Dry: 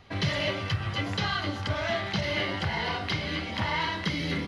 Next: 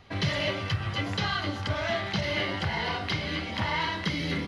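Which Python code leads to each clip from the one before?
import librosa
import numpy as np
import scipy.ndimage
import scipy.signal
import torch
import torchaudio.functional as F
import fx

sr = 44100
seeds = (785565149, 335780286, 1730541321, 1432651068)

y = x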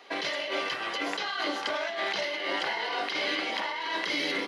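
y = scipy.signal.sosfilt(scipy.signal.butter(4, 340.0, 'highpass', fs=sr, output='sos'), x)
y = fx.notch(y, sr, hz=1300.0, q=18.0)
y = fx.over_compress(y, sr, threshold_db=-34.0, ratio=-1.0)
y = y * librosa.db_to_amplitude(3.0)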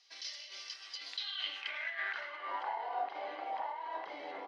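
y = fx.notch(x, sr, hz=7100.0, q=19.0)
y = fx.filter_sweep_bandpass(y, sr, from_hz=5400.0, to_hz=780.0, start_s=0.88, end_s=2.81, q=4.5)
y = y * librosa.db_to_amplitude(1.0)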